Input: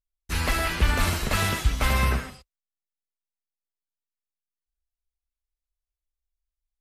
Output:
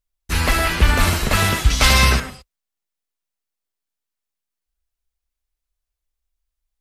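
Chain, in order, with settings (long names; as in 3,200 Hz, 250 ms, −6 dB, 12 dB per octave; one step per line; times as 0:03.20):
0:01.70–0:02.20: parametric band 5,100 Hz +11.5 dB 1.8 octaves
level +7 dB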